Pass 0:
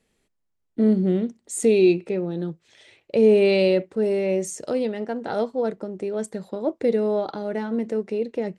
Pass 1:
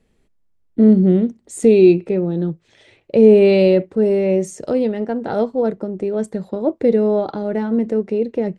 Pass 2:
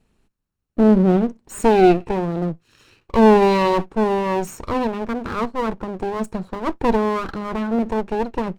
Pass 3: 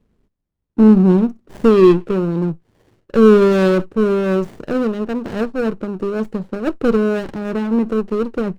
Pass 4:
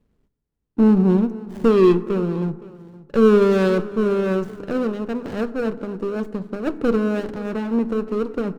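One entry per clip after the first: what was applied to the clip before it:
tilt -2 dB/oct; gain +3.5 dB
minimum comb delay 0.72 ms
running maximum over 33 samples; gain +2.5 dB
echo 0.518 s -19 dB; reverb RT60 1.6 s, pre-delay 4 ms, DRR 14 dB; gain -4 dB

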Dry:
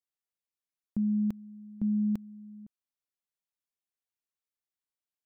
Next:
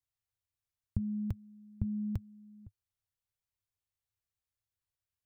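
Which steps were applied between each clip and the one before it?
resonant low shelf 150 Hz +13.5 dB, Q 3; gain -1.5 dB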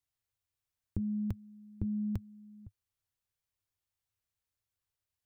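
core saturation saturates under 120 Hz; gain +1.5 dB

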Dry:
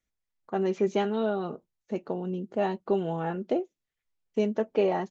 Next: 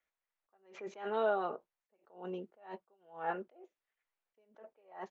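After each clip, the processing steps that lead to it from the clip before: three-band isolator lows -22 dB, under 490 Hz, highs -15 dB, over 2700 Hz; in parallel at -2.5 dB: compressor, threshold -38 dBFS, peak gain reduction 11.5 dB; on the sum: attack slew limiter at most 140 dB/s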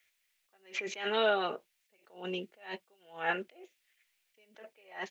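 resonant high shelf 1600 Hz +12.5 dB, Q 1.5; gain +4 dB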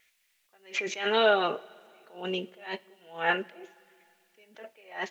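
wow and flutter 24 cents; two-slope reverb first 0.23 s, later 2.5 s, from -18 dB, DRR 15 dB; gain +5.5 dB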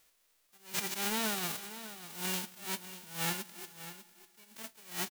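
spectral whitening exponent 0.1; compressor 6:1, threshold -31 dBFS, peak gain reduction 13 dB; echo 0.596 s -13 dB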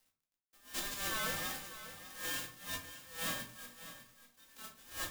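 band inversion scrambler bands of 2000 Hz; requantised 10-bit, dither none; shoebox room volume 230 m³, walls furnished, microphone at 2.1 m; gain -7 dB

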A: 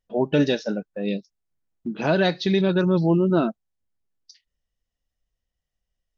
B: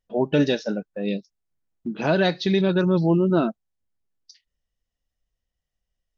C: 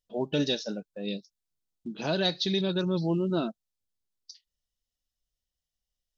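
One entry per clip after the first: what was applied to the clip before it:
nothing audible
resonant high shelf 2800 Hz +8 dB, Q 1.5; gain -8 dB

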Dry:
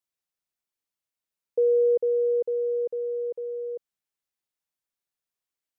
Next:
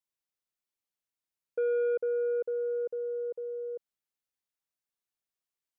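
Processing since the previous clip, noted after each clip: soft clip -20.5 dBFS, distortion -16 dB; gain -4 dB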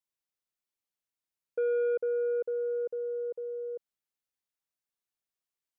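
nothing audible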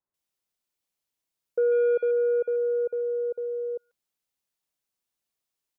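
bands offset in time lows, highs 0.14 s, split 1600 Hz; gain +6 dB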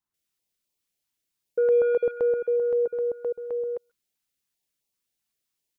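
stepped notch 7.7 Hz 510–1500 Hz; gain +3.5 dB

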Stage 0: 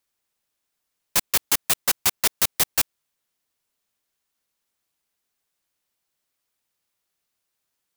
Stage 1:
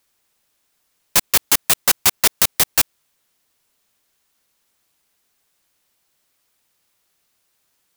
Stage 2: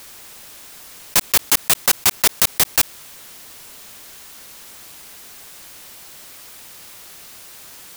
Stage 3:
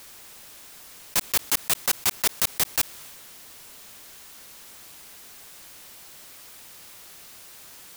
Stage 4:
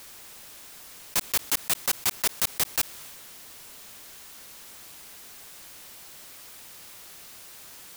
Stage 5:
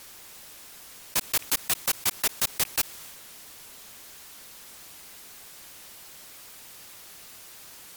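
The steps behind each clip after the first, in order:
maximiser +12 dB; gain -1 dB
fast leveller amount 50%; gain -1 dB
transient shaper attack -3 dB, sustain +3 dB; gain -5.5 dB
soft clip -15.5 dBFS, distortion -15 dB
rattling part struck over -54 dBFS, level -28 dBFS; MP3 96 kbps 44100 Hz

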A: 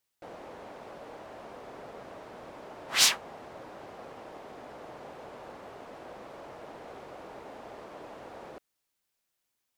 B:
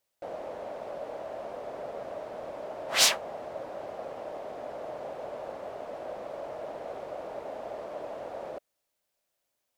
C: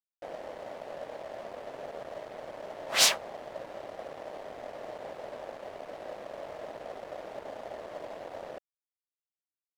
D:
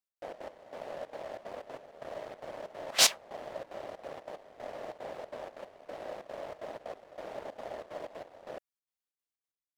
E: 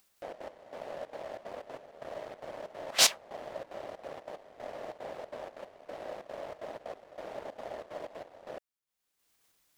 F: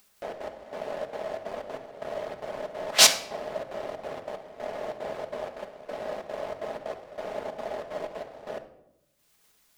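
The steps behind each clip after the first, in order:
bell 600 Hz +11.5 dB 0.65 oct
crossover distortion -46.5 dBFS
step gate "x.xx.x...xxxx.xx" 186 bpm -12 dB
upward compressor, threshold -51 dBFS
shoebox room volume 2700 m³, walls furnished, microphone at 1.4 m; gain +6 dB

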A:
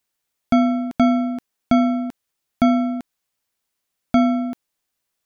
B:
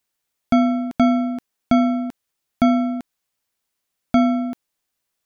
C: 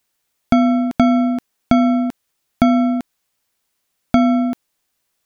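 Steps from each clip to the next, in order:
nothing audible
compressor 3:1, threshold -17 dBFS, peak gain reduction 5 dB; gain +6.5 dB

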